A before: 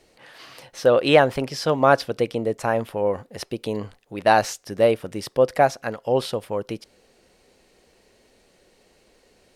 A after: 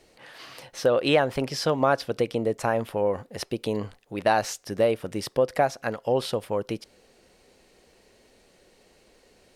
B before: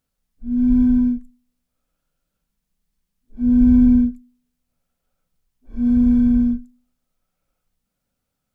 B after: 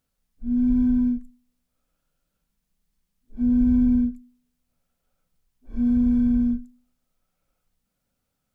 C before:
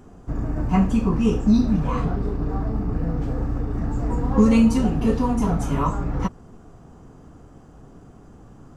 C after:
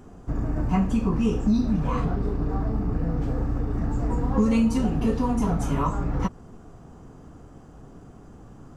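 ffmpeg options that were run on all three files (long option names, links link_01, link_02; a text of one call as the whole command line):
ffmpeg -i in.wav -af "acompressor=threshold=-21dB:ratio=2" out.wav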